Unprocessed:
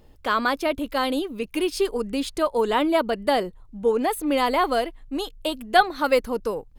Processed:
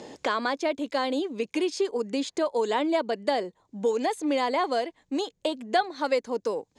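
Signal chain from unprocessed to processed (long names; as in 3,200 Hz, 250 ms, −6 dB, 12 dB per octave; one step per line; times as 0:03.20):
loudspeaker in its box 250–7,600 Hz, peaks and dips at 1,300 Hz −8 dB, 2,800 Hz −5 dB, 6,800 Hz +7 dB
multiband upward and downward compressor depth 70%
level −3 dB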